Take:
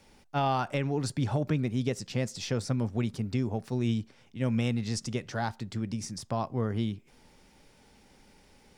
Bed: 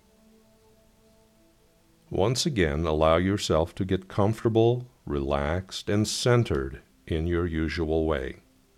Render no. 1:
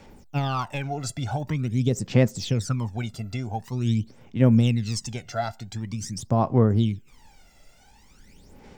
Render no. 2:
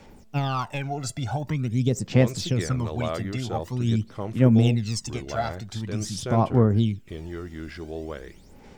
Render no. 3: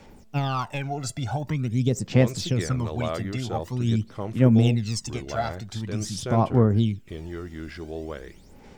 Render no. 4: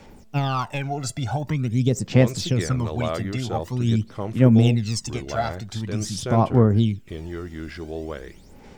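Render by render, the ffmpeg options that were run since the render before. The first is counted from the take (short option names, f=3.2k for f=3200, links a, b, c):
-af "aphaser=in_gain=1:out_gain=1:delay=1.5:decay=0.75:speed=0.46:type=sinusoidal,aexciter=amount=1.5:drive=1.2:freq=6.4k"
-filter_complex "[1:a]volume=-9dB[a];[0:a][a]amix=inputs=2:normalize=0"
-af anull
-af "volume=2.5dB"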